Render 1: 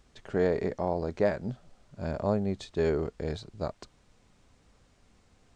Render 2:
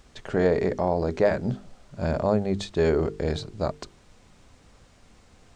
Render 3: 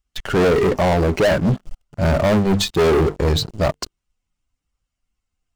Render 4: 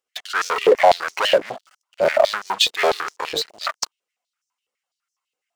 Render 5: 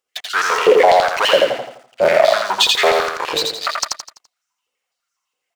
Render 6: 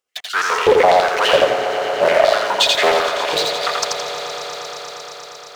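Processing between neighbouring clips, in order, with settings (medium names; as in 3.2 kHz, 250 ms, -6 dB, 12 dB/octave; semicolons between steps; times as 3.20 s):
hum notches 50/100/150/200/250/300/350/400/450 Hz; in parallel at -1 dB: peak limiter -26.5 dBFS, peak gain reduction 11.5 dB; on the sum: trim +3 dB
expander on every frequency bin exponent 1.5; waveshaping leveller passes 5
step-sequenced high-pass 12 Hz 480–5800 Hz; trim -1 dB
feedback delay 84 ms, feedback 41%, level -3 dB; loudness maximiser +4.5 dB; trim -1 dB
echo with a slow build-up 117 ms, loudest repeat 5, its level -15.5 dB; loudspeaker Doppler distortion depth 0.23 ms; trim -1 dB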